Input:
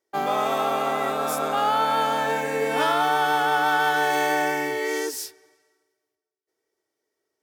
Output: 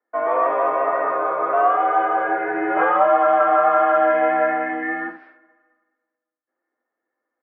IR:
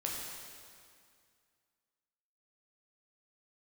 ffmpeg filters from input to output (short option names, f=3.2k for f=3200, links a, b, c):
-filter_complex "[0:a]asettb=1/sr,asplit=3[a][b][c];[a]atrim=end=2.464[d];[b]atrim=start=2.46:end=4.76,asetpts=PTS-STARTPTS,afade=t=in:d=0.004:c=qsin,afade=t=out:st=2.296:d=0.004:c=qsin,aeval=exprs='val(0)+0.5*0.0188*sgn(val(0))':c=same[e];[c]atrim=start=4.756[f];[d][e]acrossfade=d=0.004:c1=hsin:c2=qsin[g];[g][f]acrossfade=d=0.004:c1=qsin:c2=hsin,aecho=1:1:11|70:0.631|0.473,highpass=f=580:t=q:w=0.5412,highpass=f=580:t=q:w=1.307,lowpass=f=2k:t=q:w=0.5176,lowpass=f=2k:t=q:w=0.7071,lowpass=f=2k:t=q:w=1.932,afreqshift=-120,volume=4dB"